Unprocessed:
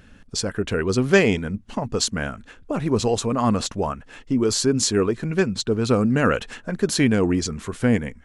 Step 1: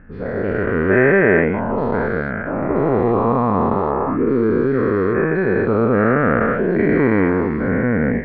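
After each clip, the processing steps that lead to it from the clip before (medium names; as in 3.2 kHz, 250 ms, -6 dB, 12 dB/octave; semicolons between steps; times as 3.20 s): every event in the spectrogram widened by 480 ms; elliptic low-pass 2 kHz, stop band 80 dB; trim -2 dB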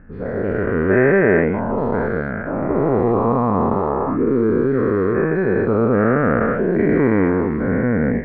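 treble shelf 2.6 kHz -10.5 dB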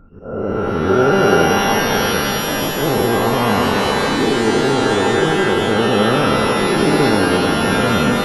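knee-point frequency compression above 1.3 kHz 4:1; slow attack 128 ms; pitch-shifted reverb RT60 3.1 s, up +12 st, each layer -2 dB, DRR 4 dB; trim -1 dB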